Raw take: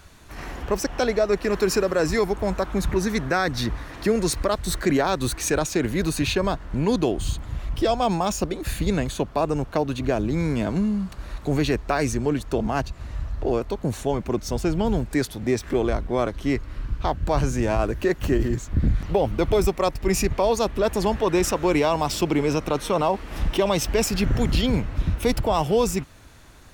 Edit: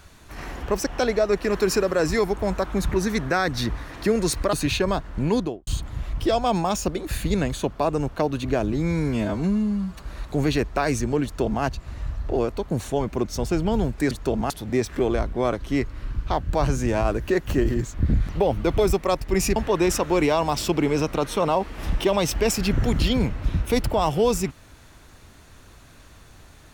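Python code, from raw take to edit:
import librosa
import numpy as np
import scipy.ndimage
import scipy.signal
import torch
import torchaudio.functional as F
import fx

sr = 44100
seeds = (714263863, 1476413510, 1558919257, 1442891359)

y = fx.studio_fade_out(x, sr, start_s=6.86, length_s=0.37)
y = fx.edit(y, sr, fx.cut(start_s=4.53, length_s=1.56),
    fx.stretch_span(start_s=10.29, length_s=0.86, factor=1.5),
    fx.duplicate(start_s=12.37, length_s=0.39, to_s=15.24),
    fx.cut(start_s=20.3, length_s=0.79), tone=tone)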